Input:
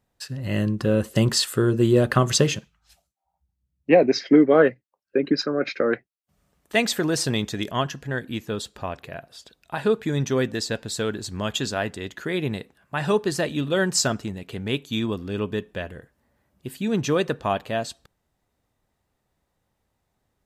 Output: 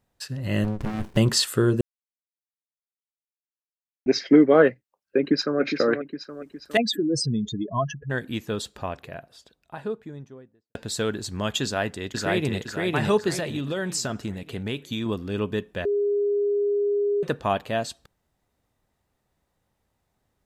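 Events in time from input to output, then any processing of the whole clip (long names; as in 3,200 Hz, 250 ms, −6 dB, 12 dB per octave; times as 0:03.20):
0:00.64–0:01.17: windowed peak hold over 65 samples
0:01.81–0:04.06: silence
0:05.18–0:05.60: delay throw 410 ms, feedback 50%, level −7.5 dB
0:06.77–0:08.10: expanding power law on the bin magnitudes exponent 3.2
0:08.62–0:10.75: fade out and dull
0:11.63–0:12.58: delay throw 510 ms, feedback 40%, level −0.5 dB
0:13.33–0:15.06: downward compressor, threshold −24 dBFS
0:15.85–0:17.23: beep over 408 Hz −20 dBFS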